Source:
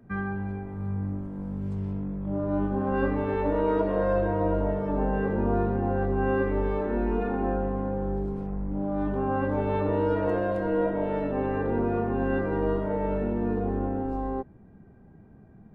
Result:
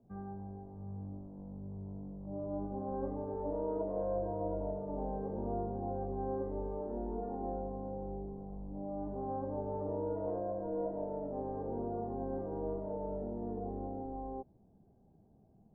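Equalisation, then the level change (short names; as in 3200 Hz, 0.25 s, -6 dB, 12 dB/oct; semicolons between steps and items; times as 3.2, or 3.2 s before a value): ladder low-pass 890 Hz, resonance 45%; air absorption 260 m; -4.5 dB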